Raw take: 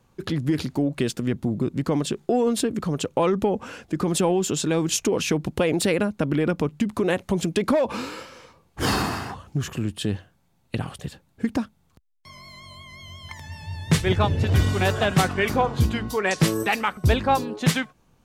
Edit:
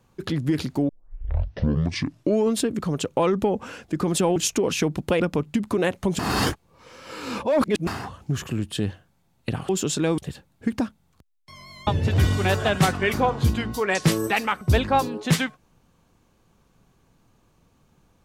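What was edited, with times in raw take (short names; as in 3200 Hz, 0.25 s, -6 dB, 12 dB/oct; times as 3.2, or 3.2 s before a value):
0.89 tape start 1.67 s
4.36–4.85 move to 10.95
5.69–6.46 cut
7.45–9.13 reverse
12.64–14.23 cut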